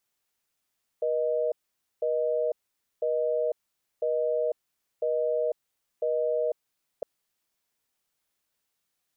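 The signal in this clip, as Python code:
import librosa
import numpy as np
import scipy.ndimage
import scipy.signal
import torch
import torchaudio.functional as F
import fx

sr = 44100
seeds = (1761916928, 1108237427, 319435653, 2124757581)

y = fx.call_progress(sr, length_s=6.01, kind='busy tone', level_db=-26.5)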